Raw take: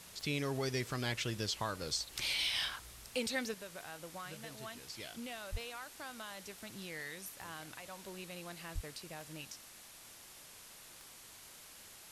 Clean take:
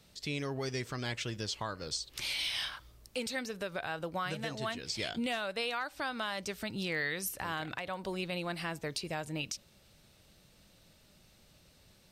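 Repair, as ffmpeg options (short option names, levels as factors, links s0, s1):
-filter_complex "[0:a]adeclick=t=4,asplit=3[s0][s1][s2];[s0]afade=t=out:st=5.51:d=0.02[s3];[s1]highpass=f=140:w=0.5412,highpass=f=140:w=1.3066,afade=t=in:st=5.51:d=0.02,afade=t=out:st=5.63:d=0.02[s4];[s2]afade=t=in:st=5.63:d=0.02[s5];[s3][s4][s5]amix=inputs=3:normalize=0,asplit=3[s6][s7][s8];[s6]afade=t=out:st=8.74:d=0.02[s9];[s7]highpass=f=140:w=0.5412,highpass=f=140:w=1.3066,afade=t=in:st=8.74:d=0.02,afade=t=out:st=8.86:d=0.02[s10];[s8]afade=t=in:st=8.86:d=0.02[s11];[s9][s10][s11]amix=inputs=3:normalize=0,afwtdn=0.0022,asetnsamples=n=441:p=0,asendcmd='3.54 volume volume 11dB',volume=1"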